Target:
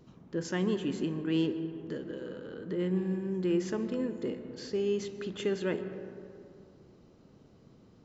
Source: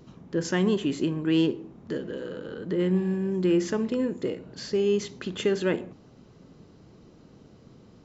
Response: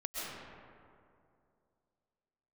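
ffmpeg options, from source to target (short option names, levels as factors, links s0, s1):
-filter_complex "[0:a]asplit=2[s0][s1];[1:a]atrim=start_sample=2205,highshelf=f=3900:g=-10.5[s2];[s1][s2]afir=irnorm=-1:irlink=0,volume=0.316[s3];[s0][s3]amix=inputs=2:normalize=0,volume=0.398"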